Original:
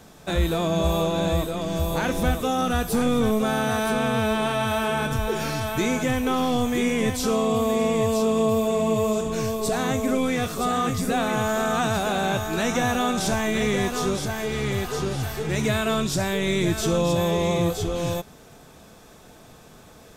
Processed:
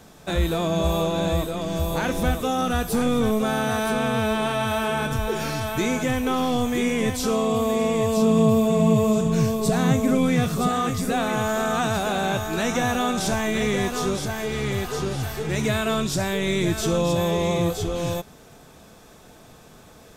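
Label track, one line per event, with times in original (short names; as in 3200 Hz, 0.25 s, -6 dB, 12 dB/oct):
8.170000	10.690000	bell 160 Hz +13.5 dB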